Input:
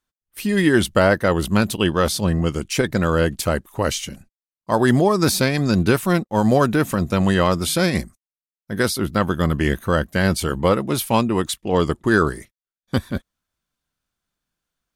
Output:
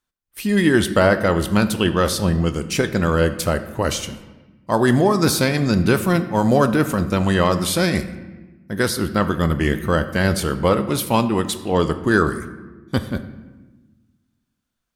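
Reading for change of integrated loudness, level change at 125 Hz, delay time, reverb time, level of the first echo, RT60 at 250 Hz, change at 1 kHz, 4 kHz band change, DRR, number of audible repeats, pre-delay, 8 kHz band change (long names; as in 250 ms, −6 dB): +0.5 dB, +0.5 dB, no echo audible, 1.2 s, no echo audible, 1.7 s, +0.5 dB, +0.5 dB, 10.0 dB, no echo audible, 19 ms, 0.0 dB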